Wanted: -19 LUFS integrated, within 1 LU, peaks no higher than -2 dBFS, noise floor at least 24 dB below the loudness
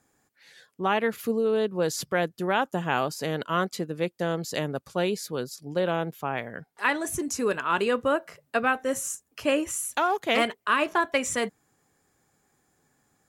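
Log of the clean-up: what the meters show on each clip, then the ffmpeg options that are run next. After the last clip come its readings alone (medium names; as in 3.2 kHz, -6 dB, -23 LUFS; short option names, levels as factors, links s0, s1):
loudness -27.5 LUFS; peak level -9.5 dBFS; loudness target -19.0 LUFS
-> -af "volume=2.66,alimiter=limit=0.794:level=0:latency=1"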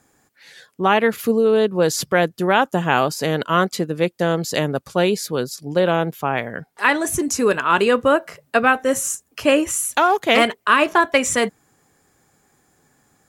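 loudness -19.0 LUFS; peak level -2.0 dBFS; noise floor -64 dBFS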